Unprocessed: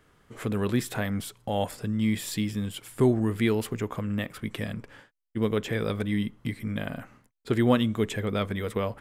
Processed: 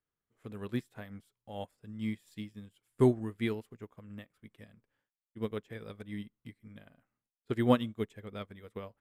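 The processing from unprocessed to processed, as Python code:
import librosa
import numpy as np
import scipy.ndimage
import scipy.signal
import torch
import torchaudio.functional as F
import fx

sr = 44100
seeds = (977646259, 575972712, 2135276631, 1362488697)

y = fx.upward_expand(x, sr, threshold_db=-38.0, expansion=2.5)
y = y * 10.0 ** (-1.5 / 20.0)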